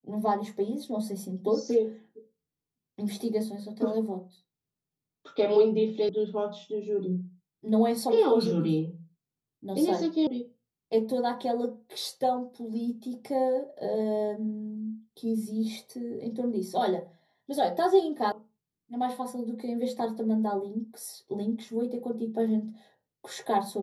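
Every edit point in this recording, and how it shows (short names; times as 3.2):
6.09 sound cut off
10.27 sound cut off
18.32 sound cut off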